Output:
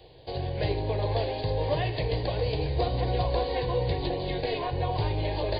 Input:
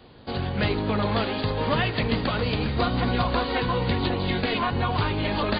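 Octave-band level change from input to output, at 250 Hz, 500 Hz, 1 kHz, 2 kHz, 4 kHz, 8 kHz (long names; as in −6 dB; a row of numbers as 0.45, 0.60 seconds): −10.0 dB, −0.5 dB, −5.5 dB, −10.5 dB, −6.5 dB, can't be measured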